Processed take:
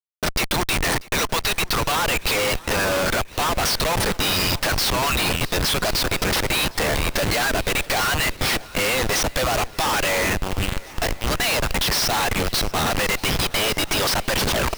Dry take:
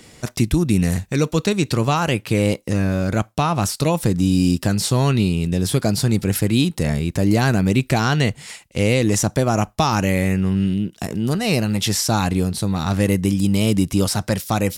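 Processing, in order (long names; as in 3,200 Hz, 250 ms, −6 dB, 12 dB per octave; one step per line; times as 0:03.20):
turntable brake at the end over 0.39 s
reverb reduction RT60 0.64 s
high-pass filter 610 Hz 24 dB per octave
spectral tilt +3.5 dB per octave
leveller curve on the samples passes 3
downward compressor 12 to 1, threshold −11 dBFS, peak gain reduction 8.5 dB
Savitzky-Golay smoothing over 15 samples
comparator with hysteresis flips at −26 dBFS
feedback echo with a long and a short gap by turns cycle 1,064 ms, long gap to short 1.5 to 1, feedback 60%, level −22 dB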